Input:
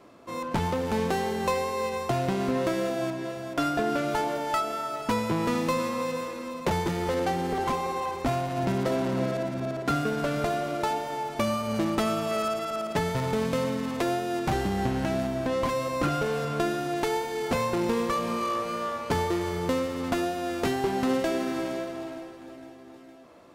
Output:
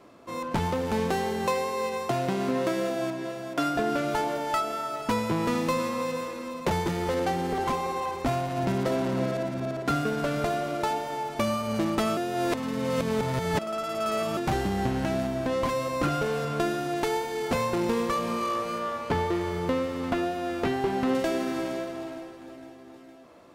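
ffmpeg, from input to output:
ffmpeg -i in.wav -filter_complex "[0:a]asettb=1/sr,asplit=3[link_01][link_02][link_03];[link_01]atrim=end=1.464[link_04];[link_02]atrim=start=1.46:end=3.76,asetpts=PTS-STARTPTS,afade=type=in:duration=0.004:curve=qsin,afade=type=out:start_time=2.296:duration=0.004:curve=qsin,highpass=130[link_05];[link_03]atrim=start=3.756[link_06];[link_04][link_05]acrossfade=duration=0.004:curve1=hsin:curve2=qsin[link_07];[link_07][link_06]acrossfade=duration=0.004:curve1=qsin:curve2=hsin,asettb=1/sr,asplit=3[link_08][link_09][link_10];[link_08]atrim=end=18.784[link_11];[link_09]atrim=start=18.78:end=21.15,asetpts=PTS-STARTPTS,afade=type=in:duration=0.004:curve=qsin,afade=type=out:start_time=2.366:duration=0.004:curve=qsin,acrossover=split=3800[link_12][link_13];[link_13]acompressor=threshold=-48dB:ratio=4:attack=1:release=60[link_14];[link_12][link_14]amix=inputs=2:normalize=0[link_15];[link_10]atrim=start=21.146[link_16];[link_11][link_15]acrossfade=duration=0.004:curve1=hsin:curve2=qsin[link_17];[link_17][link_16]acrossfade=duration=0.004:curve1=qsin:curve2=hsin,asplit=3[link_18][link_19][link_20];[link_18]atrim=end=12.172[link_21];[link_19]atrim=start=12.168:end=14.372,asetpts=PTS-STARTPTS,areverse[link_22];[link_20]atrim=start=14.368[link_23];[link_21][link_22]acrossfade=duration=0.004:curve1=hsin:curve2=hsin[link_24];[link_24][link_23]acrossfade=duration=0.004:curve1=hsin:curve2=hsin" out.wav

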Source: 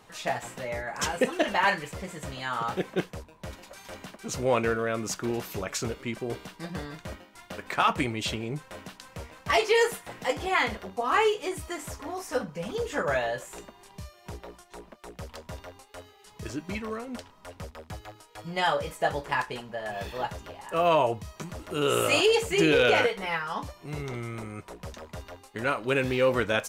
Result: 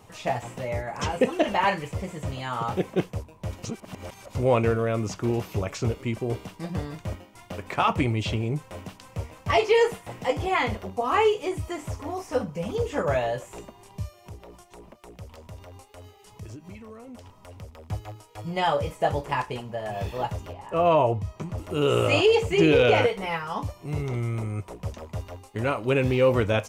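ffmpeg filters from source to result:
ffmpeg -i in.wav -filter_complex "[0:a]asettb=1/sr,asplit=3[link_01][link_02][link_03];[link_01]atrim=end=14.174[link_04];[link_02]atrim=start=14.17:end=17.84,asetpts=PTS-STARTPTS,afade=type=in:duration=0.004:curve=qsin,afade=type=out:start_time=3.666:duration=0.004:curve=qsin,acompressor=threshold=-44dB:ratio=6:attack=3.2:release=140:knee=1:detection=peak[link_05];[link_03]atrim=start=17.836[link_06];[link_04][link_05]acrossfade=duration=0.004:curve1=hsin:curve2=qsin[link_07];[link_07][link_06]acrossfade=duration=0.004:curve1=qsin:curve2=hsin,asettb=1/sr,asplit=3[link_08][link_09][link_10];[link_08]atrim=end=20.534[link_11];[link_09]atrim=start=20.53:end=21.58,asetpts=PTS-STARTPTS,afade=type=in:duration=0.004:curve=qsin,afade=type=out:start_time=1.046:duration=0.004:curve=qsin,lowpass=frequency=2600:poles=1[link_12];[link_10]atrim=start=21.576[link_13];[link_11][link_12]acrossfade=duration=0.004:curve1=hsin:curve2=qsin[link_14];[link_14][link_13]acrossfade=duration=0.004:curve1=qsin:curve2=hsin,asplit=3[link_15][link_16][link_17];[link_15]atrim=end=3.642[link_18];[link_16]atrim=start=3.638:end=4.352,asetpts=PTS-STARTPTS,areverse[link_19];[link_17]atrim=start=4.348[link_20];[link_18][link_19]acrossfade=duration=0.004:curve1=hsin:curve2=hsin[link_21];[link_21][link_20]acrossfade=duration=0.004:curve1=hsin:curve2=hsin,acrossover=split=5300[link_22][link_23];[link_23]acompressor=threshold=-54dB:ratio=4:attack=1:release=60[link_24];[link_22][link_24]amix=inputs=2:normalize=0,equalizer=frequency=100:width_type=o:width=0.67:gain=10,equalizer=frequency=1600:width_type=o:width=0.67:gain=-8,equalizer=frequency=4000:width_type=o:width=0.67:gain=-6,volume=3.5dB" out.wav

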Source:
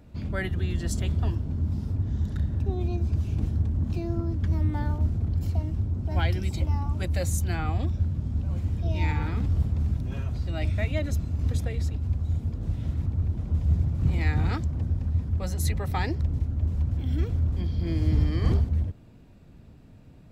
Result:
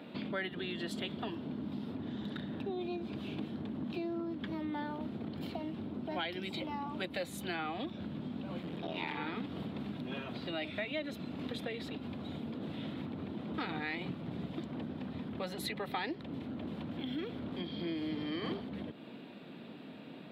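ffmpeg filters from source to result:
ffmpeg -i in.wav -filter_complex "[0:a]asettb=1/sr,asplit=3[link_01][link_02][link_03];[link_01]atrim=end=8.624[link_04];[link_02]atrim=start=8.62:end=9.17,asetpts=PTS-STARTPTS,afade=type=in:duration=0.004:curve=qsin,afade=type=out:start_time=0.546:duration=0.004:curve=qsin,aeval=exprs='clip(val(0),-1,0.0119)':channel_layout=same[link_05];[link_03]atrim=start=9.166[link_06];[link_04][link_05]acrossfade=duration=0.004:curve1=hsin:curve2=qsin[link_07];[link_07][link_06]acrossfade=duration=0.004:curve1=qsin:curve2=hsin,asplit=3[link_08][link_09][link_10];[link_08]atrim=end=13.582[link_11];[link_09]atrim=start=13.578:end=14.582,asetpts=PTS-STARTPTS,areverse[link_12];[link_10]atrim=start=14.578[link_13];[link_11][link_12]acrossfade=duration=0.004:curve1=hsin:curve2=hsin[link_14];[link_14][link_13]acrossfade=duration=0.004:curve1=hsin:curve2=hsin,highpass=frequency=210:width=0.5412,highpass=frequency=210:width=1.3066,highshelf=frequency=4700:width_type=q:width=3:gain=-10,acompressor=threshold=-48dB:ratio=3,volume=8.5dB" out.wav

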